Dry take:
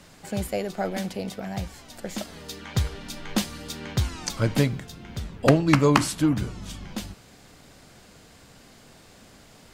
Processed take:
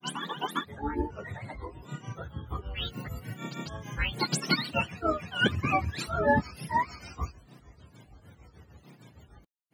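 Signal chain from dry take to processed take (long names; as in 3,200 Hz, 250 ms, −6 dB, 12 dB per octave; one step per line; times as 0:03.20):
frequency axis turned over on the octave scale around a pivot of 590 Hz
granular cloud 224 ms, grains 6.6 per second, spray 593 ms, pitch spread up and down by 12 semitones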